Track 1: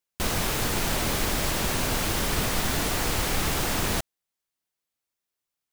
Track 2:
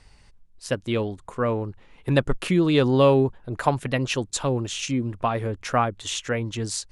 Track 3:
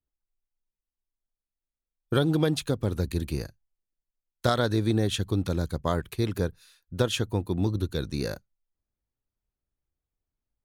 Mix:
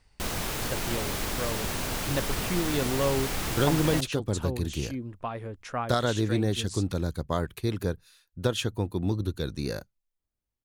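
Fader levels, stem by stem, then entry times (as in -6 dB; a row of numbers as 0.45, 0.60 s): -5.0, -10.0, -1.5 dB; 0.00, 0.00, 1.45 s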